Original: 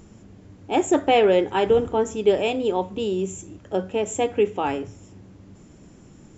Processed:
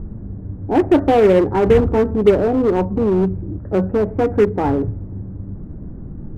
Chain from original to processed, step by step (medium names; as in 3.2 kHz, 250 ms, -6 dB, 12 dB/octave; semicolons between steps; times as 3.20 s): steep low-pass 1.8 kHz 36 dB/octave; tilt EQ -4.5 dB/octave; in parallel at -6 dB: wavefolder -17.5 dBFS